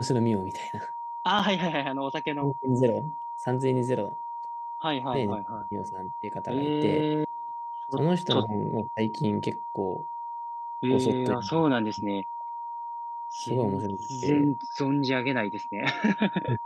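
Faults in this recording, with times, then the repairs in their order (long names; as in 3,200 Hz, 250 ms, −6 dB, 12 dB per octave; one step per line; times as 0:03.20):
whistle 940 Hz −33 dBFS
0:01.39–0:01.40: drop-out 5.3 ms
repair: notch filter 940 Hz, Q 30
repair the gap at 0:01.39, 5.3 ms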